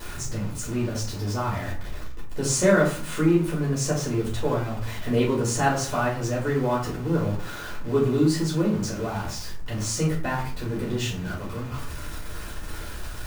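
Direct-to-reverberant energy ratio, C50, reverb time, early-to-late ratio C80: −6.0 dB, 6.5 dB, 0.50 s, 10.5 dB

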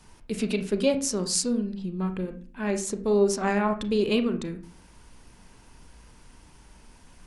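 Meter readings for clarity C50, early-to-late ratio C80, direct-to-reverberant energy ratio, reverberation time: 11.5 dB, 16.0 dB, 7.5 dB, 0.40 s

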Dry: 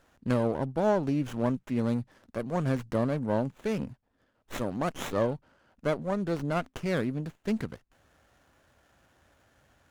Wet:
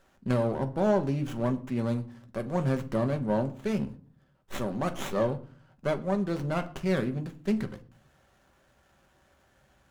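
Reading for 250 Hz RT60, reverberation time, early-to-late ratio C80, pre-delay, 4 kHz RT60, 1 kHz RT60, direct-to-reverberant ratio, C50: 0.70 s, 0.45 s, 20.5 dB, 5 ms, 0.30 s, 0.45 s, 6.5 dB, 17.0 dB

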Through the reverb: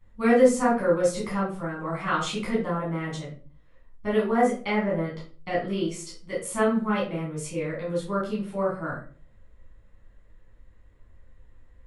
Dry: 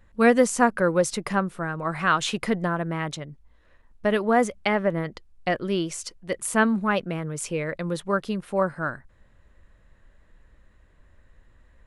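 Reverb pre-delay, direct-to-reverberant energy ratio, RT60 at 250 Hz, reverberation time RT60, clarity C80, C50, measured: 10 ms, −8.0 dB, 0.55 s, 0.40 s, 11.0 dB, 5.0 dB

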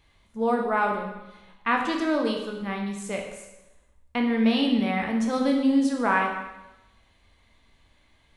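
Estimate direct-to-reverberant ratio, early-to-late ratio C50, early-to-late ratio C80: 1.0 dB, 5.0 dB, 7.0 dB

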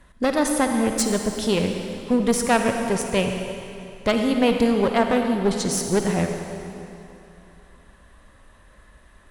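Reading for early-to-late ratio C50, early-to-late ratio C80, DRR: 4.5 dB, 5.0 dB, 4.0 dB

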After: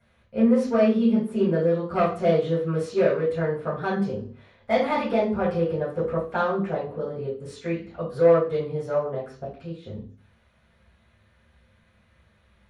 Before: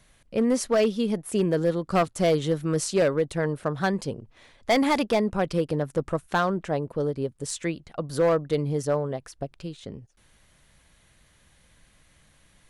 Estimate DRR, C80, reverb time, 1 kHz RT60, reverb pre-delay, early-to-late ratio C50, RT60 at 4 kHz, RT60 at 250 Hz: −9.0 dB, 10.5 dB, 0.45 s, 0.45 s, 3 ms, 5.5 dB, 0.45 s, 0.45 s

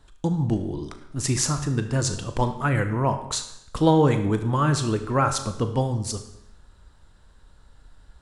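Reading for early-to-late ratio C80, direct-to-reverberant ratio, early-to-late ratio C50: 12.0 dB, 7.5 dB, 10.0 dB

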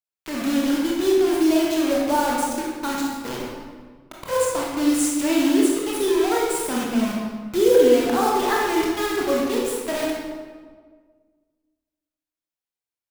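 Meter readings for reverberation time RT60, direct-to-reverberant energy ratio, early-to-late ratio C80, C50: 1.6 s, −4.0 dB, 2.0 dB, −1.0 dB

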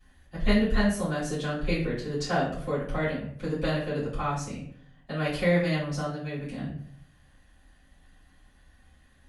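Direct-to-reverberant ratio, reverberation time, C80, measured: −12.5 dB, 0.60 s, 8.5 dB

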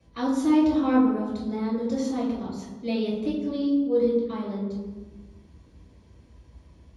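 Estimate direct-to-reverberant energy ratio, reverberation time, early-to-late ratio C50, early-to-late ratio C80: −9.0 dB, 1.2 s, 1.0 dB, 4.0 dB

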